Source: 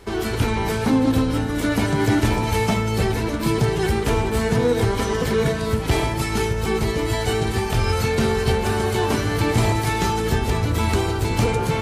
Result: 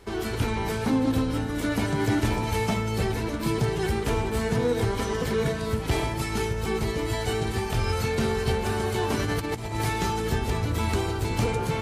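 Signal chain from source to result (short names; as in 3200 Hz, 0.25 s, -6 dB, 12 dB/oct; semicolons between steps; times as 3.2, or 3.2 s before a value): 9.19–9.87 negative-ratio compressor -22 dBFS, ratio -0.5; gain -5.5 dB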